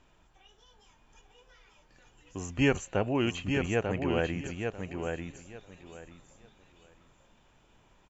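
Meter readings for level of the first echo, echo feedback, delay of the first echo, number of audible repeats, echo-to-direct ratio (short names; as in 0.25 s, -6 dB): -5.0 dB, 21%, 0.893 s, 3, -5.0 dB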